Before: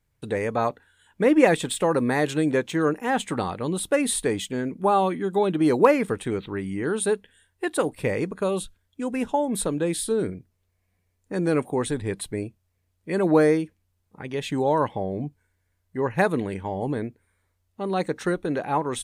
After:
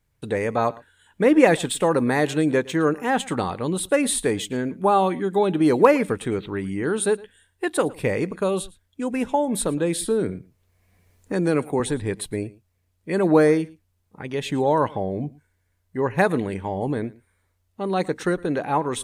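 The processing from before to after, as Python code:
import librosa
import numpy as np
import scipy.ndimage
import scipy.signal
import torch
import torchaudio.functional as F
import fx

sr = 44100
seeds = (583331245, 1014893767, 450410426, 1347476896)

y = x + 10.0 ** (-22.0 / 20.0) * np.pad(x, (int(112 * sr / 1000.0), 0))[:len(x)]
y = fx.band_squash(y, sr, depth_pct=40, at=(10.01, 11.8))
y = y * librosa.db_to_amplitude(2.0)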